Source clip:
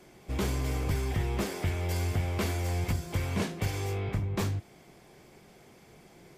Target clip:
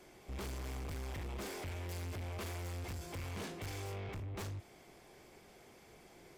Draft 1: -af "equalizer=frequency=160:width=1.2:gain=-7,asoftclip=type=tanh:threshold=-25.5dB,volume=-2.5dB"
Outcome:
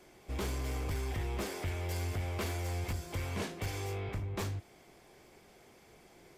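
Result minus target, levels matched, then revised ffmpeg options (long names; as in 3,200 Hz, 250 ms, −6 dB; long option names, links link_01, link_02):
soft clipping: distortion −12 dB
-af "equalizer=frequency=160:width=1.2:gain=-7,asoftclip=type=tanh:threshold=-37.5dB,volume=-2.5dB"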